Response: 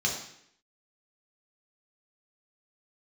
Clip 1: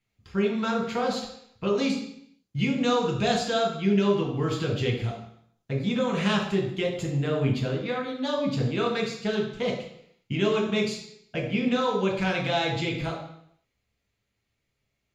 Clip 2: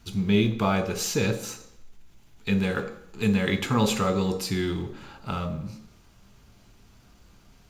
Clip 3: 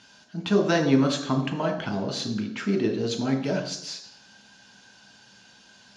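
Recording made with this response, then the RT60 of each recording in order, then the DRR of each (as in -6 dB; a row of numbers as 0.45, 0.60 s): 1; 0.70, 0.70, 0.70 s; -1.5, 7.5, 3.5 dB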